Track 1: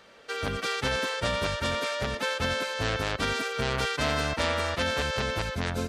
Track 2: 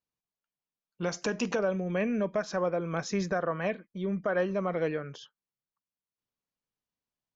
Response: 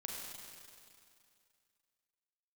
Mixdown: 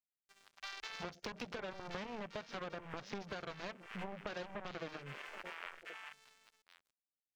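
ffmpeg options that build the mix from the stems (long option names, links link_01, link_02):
-filter_complex "[0:a]highpass=frequency=930:width=0.5412,highpass=frequency=930:width=1.3066,aeval=exprs='0.2*(cos(1*acos(clip(val(0)/0.2,-1,1)))-cos(1*PI/2))+0.00141*(cos(3*acos(clip(val(0)/0.2,-1,1)))-cos(3*PI/2))+0.02*(cos(7*acos(clip(val(0)/0.2,-1,1)))-cos(7*PI/2))':channel_layout=same,acrusher=bits=5:mix=0:aa=0.5,volume=-9dB,asplit=2[link_01][link_02];[link_02]volume=-4.5dB[link_03];[1:a]aeval=exprs='0.126*(cos(1*acos(clip(val(0)/0.126,-1,1)))-cos(1*PI/2))+0.0398*(cos(7*acos(clip(val(0)/0.126,-1,1)))-cos(7*PI/2))':channel_layout=same,volume=-3.5dB,asplit=3[link_04][link_05][link_06];[link_05]volume=-23dB[link_07];[link_06]apad=whole_len=259435[link_08];[link_01][link_08]sidechaincompress=threshold=-44dB:ratio=6:attack=40:release=349[link_09];[link_03][link_07]amix=inputs=2:normalize=0,aecho=0:1:1074:1[link_10];[link_09][link_04][link_10]amix=inputs=3:normalize=0,afwtdn=0.00562,acompressor=threshold=-40dB:ratio=10"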